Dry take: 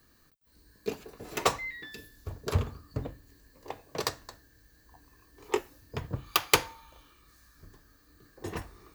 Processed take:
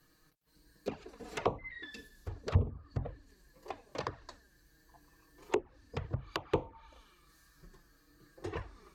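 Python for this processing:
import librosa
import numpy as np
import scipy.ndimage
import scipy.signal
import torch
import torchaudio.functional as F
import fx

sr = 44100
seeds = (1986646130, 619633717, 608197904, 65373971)

y = fx.env_flanger(x, sr, rest_ms=6.7, full_db=-24.5)
y = fx.env_lowpass_down(y, sr, base_hz=770.0, full_db=-29.5)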